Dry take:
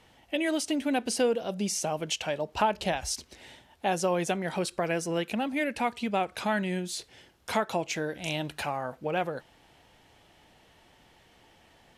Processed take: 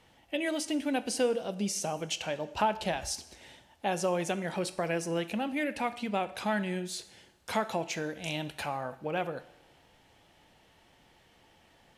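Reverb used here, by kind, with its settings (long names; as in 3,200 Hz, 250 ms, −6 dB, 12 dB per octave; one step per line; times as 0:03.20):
coupled-rooms reverb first 0.72 s, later 2 s, DRR 12 dB
level −3 dB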